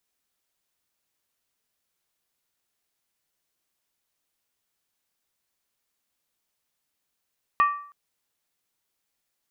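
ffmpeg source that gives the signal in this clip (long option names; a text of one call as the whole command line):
ffmpeg -f lavfi -i "aevalsrc='0.2*pow(10,-3*t/0.53)*sin(2*PI*1160*t)+0.0708*pow(10,-3*t/0.42)*sin(2*PI*1849*t)+0.0251*pow(10,-3*t/0.363)*sin(2*PI*2477.8*t)+0.00891*pow(10,-3*t/0.35)*sin(2*PI*2663.4*t)+0.00316*pow(10,-3*t/0.325)*sin(2*PI*3077.5*t)':duration=0.32:sample_rate=44100" out.wav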